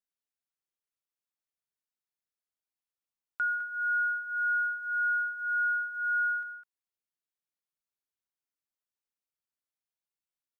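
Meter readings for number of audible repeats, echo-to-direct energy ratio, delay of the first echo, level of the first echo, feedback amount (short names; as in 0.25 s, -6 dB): 1, -11.0 dB, 0.206 s, -11.0 dB, no steady repeat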